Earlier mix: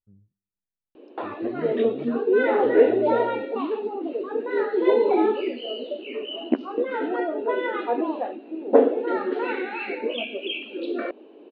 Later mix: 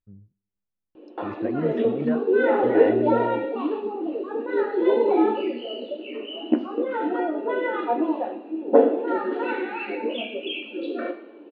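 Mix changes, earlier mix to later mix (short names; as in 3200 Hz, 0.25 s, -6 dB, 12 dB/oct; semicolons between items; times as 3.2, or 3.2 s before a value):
speech +8.0 dB; background: send on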